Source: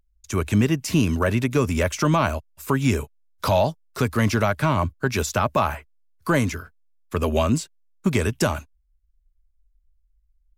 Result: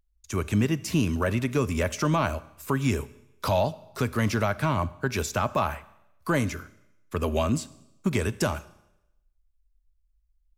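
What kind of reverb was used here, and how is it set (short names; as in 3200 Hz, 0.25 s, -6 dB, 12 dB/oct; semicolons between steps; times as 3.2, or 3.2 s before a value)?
Schroeder reverb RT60 0.87 s, combs from 29 ms, DRR 17.5 dB; gain -4.5 dB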